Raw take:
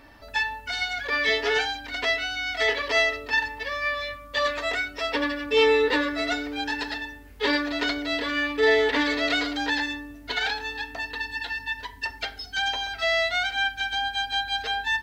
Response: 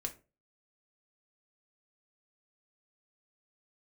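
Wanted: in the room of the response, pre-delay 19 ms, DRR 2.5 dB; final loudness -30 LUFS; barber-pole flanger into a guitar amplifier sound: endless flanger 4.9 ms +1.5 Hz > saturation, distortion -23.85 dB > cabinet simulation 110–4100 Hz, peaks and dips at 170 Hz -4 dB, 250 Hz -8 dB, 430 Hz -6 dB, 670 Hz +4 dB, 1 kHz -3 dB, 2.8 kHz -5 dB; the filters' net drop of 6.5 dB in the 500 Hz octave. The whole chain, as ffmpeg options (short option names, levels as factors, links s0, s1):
-filter_complex "[0:a]equalizer=f=500:t=o:g=-6.5,asplit=2[s0][s1];[1:a]atrim=start_sample=2205,adelay=19[s2];[s1][s2]afir=irnorm=-1:irlink=0,volume=0.794[s3];[s0][s3]amix=inputs=2:normalize=0,asplit=2[s4][s5];[s5]adelay=4.9,afreqshift=1.5[s6];[s4][s6]amix=inputs=2:normalize=1,asoftclip=threshold=0.188,highpass=110,equalizer=f=170:t=q:w=4:g=-4,equalizer=f=250:t=q:w=4:g=-8,equalizer=f=430:t=q:w=4:g=-6,equalizer=f=670:t=q:w=4:g=4,equalizer=f=1000:t=q:w=4:g=-3,equalizer=f=2800:t=q:w=4:g=-5,lowpass=f=4100:w=0.5412,lowpass=f=4100:w=1.3066"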